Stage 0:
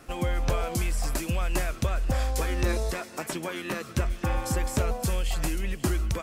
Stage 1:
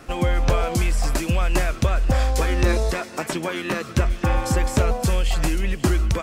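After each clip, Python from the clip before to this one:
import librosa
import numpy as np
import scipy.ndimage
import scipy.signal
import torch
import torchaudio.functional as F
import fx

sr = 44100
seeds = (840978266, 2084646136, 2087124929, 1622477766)

y = fx.peak_eq(x, sr, hz=13000.0, db=-7.0, octaves=1.1)
y = y * librosa.db_to_amplitude(7.0)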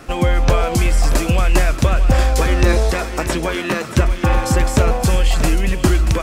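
y = x + 10.0 ** (-11.0 / 20.0) * np.pad(x, (int(632 * sr / 1000.0), 0))[:len(x)]
y = y * librosa.db_to_amplitude(5.0)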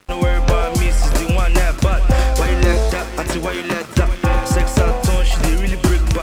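y = np.sign(x) * np.maximum(np.abs(x) - 10.0 ** (-36.0 / 20.0), 0.0)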